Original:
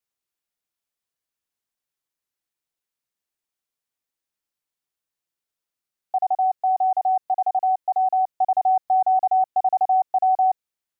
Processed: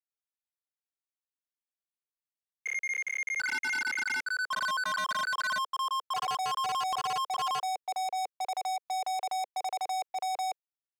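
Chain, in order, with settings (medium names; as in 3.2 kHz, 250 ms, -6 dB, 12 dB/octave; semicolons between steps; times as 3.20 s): gate -25 dBFS, range -11 dB; volume shaper 89 bpm, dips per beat 1, -19 dB, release 149 ms; ever faster or slower copies 162 ms, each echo +6 st, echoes 3; peak limiter -17.5 dBFS, peak gain reduction 7 dB; waveshaping leveller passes 3; steep high-pass 480 Hz 48 dB/octave; saturation -28.5 dBFS, distortion -9 dB; trim -1 dB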